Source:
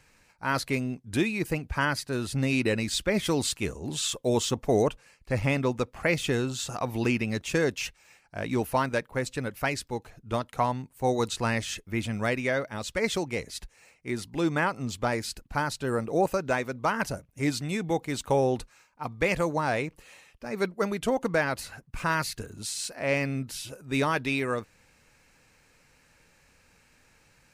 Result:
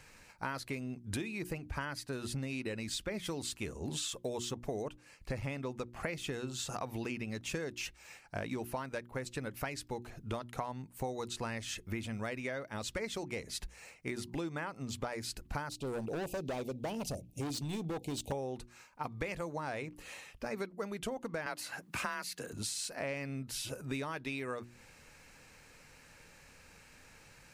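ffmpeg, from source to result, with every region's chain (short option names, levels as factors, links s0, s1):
-filter_complex "[0:a]asettb=1/sr,asplit=3[s0][s1][s2];[s0]atrim=end=15.694[s3];[s1]atrim=start=15.69:end=18.32,asetpts=PTS-STARTPTS,afade=t=in:d=0.004:c=qsin,afade=t=out:st=2.626:d=0.004:c=qsin,asuperstop=centerf=1400:order=8:qfactor=0.78,asoftclip=type=hard:threshold=0.0316[s4];[s2]atrim=start=18.316[s5];[s3][s4]acrossfade=d=0.004:c1=hsin:c2=qsin[s6];[s6][s5]acrossfade=d=0.004:c1=qsin:c2=hsin,asettb=1/sr,asplit=3[s7][s8][s9];[s7]atrim=end=21.464[s10];[s8]atrim=start=21.46:end=22.53,asetpts=PTS-STARTPTS,afade=t=in:d=0.004:c=qsin,afade=t=out:st=1.066:d=0.004:c=qsin,highpass=f=390:p=1,afreqshift=33,acontrast=84[s11];[s9]atrim=start=22.526[s12];[s10][s11]acrossfade=d=0.004:c1=hsin:c2=qsin[s13];[s13][s12]acrossfade=d=0.004:c1=qsin:c2=hsin,bandreject=f=60:t=h:w=6,bandreject=f=120:t=h:w=6,bandreject=f=180:t=h:w=6,bandreject=f=240:t=h:w=6,bandreject=f=300:t=h:w=6,bandreject=f=360:t=h:w=6,acompressor=threshold=0.0112:ratio=10,volume=1.5"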